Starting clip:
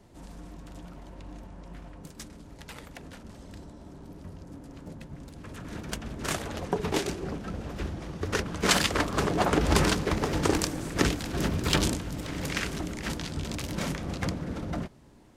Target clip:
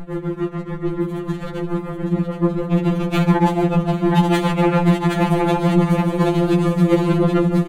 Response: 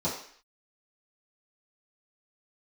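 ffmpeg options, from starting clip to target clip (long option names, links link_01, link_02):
-filter_complex "[0:a]asplit=2[link_01][link_02];[link_02]aecho=0:1:149|298|447|596|745:0.355|0.163|0.0751|0.0345|0.0159[link_03];[link_01][link_03]amix=inputs=2:normalize=0,asetrate=88200,aresample=44100,tremolo=f=6.9:d=0.87,aemphasis=mode=reproduction:type=riaa,dynaudnorm=framelen=940:gausssize=7:maxgain=11.5dB,equalizer=frequency=5300:width_type=o:width=0.41:gain=-11,asplit=2[link_04][link_05];[link_05]aecho=0:1:771:0.473[link_06];[link_04][link_06]amix=inputs=2:normalize=0,acompressor=threshold=-28dB:ratio=6,alimiter=level_in=22.5dB:limit=-1dB:release=50:level=0:latency=1,afftfilt=real='re*2.83*eq(mod(b,8),0)':imag='im*2.83*eq(mod(b,8),0)':win_size=2048:overlap=0.75,volume=-3dB"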